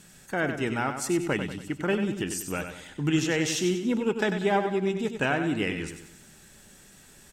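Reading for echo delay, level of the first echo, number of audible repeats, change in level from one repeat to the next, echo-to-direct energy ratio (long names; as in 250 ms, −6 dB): 95 ms, −8.0 dB, 4, −7.0 dB, −7.0 dB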